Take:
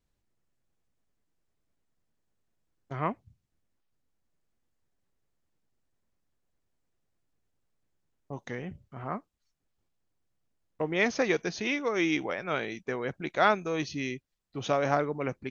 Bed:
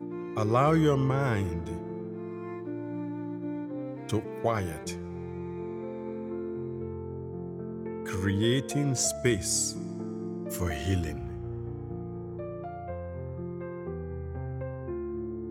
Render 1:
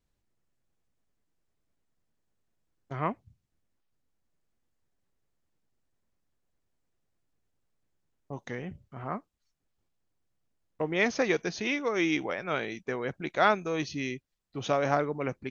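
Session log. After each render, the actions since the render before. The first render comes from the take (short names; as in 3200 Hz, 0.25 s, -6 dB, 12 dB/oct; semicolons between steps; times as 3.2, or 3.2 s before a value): nothing audible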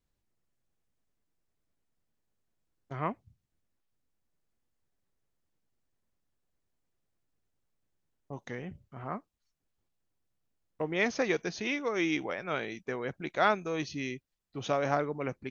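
gain -2.5 dB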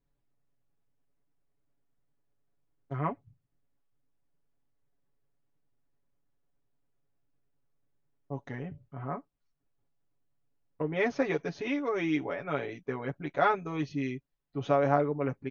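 LPF 1300 Hz 6 dB/oct; comb 7.1 ms, depth 90%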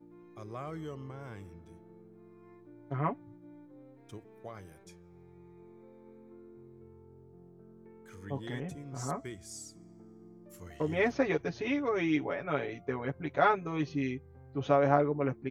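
add bed -18 dB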